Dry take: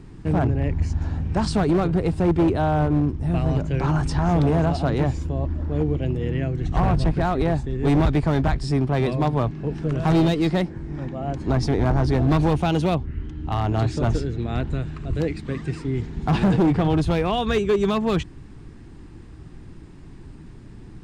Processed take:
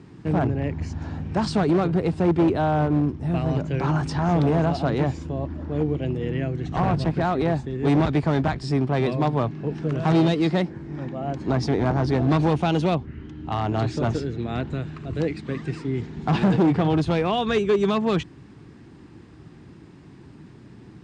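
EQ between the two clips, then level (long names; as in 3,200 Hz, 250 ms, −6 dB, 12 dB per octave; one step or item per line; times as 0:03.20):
band-pass filter 120–6,900 Hz
0.0 dB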